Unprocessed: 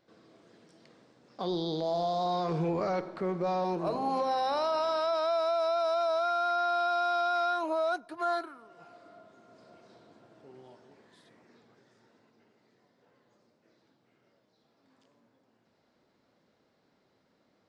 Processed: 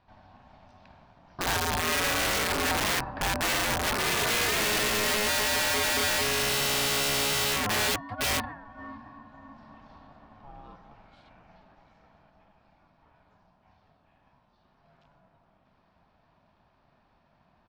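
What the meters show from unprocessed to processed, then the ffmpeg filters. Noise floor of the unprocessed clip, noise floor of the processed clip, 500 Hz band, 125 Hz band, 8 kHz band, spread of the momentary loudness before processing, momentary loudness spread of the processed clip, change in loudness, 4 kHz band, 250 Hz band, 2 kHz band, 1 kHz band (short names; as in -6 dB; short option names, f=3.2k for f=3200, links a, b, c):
-72 dBFS, -67 dBFS, -3.5 dB, +4.0 dB, n/a, 5 LU, 5 LU, +4.5 dB, +14.0 dB, +0.5 dB, +13.0 dB, -1.5 dB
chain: -filter_complex "[0:a]highpass=140,lowpass=3k,bandreject=f=1.6k:w=7.2,aeval=exprs='val(0)*sin(2*PI*420*n/s)':c=same,asplit=2[a][b];[b]adelay=566,lowpass=f=1.4k:p=1,volume=-17.5dB,asplit=2[c][d];[d]adelay=566,lowpass=f=1.4k:p=1,volume=0.44,asplit=2[e][f];[f]adelay=566,lowpass=f=1.4k:p=1,volume=0.44,asplit=2[g][h];[h]adelay=566,lowpass=f=1.4k:p=1,volume=0.44[i];[c][e][g][i]amix=inputs=4:normalize=0[j];[a][j]amix=inputs=2:normalize=0,aeval=exprs='(mod(29.9*val(0)+1,2)-1)/29.9':c=same,volume=8.5dB"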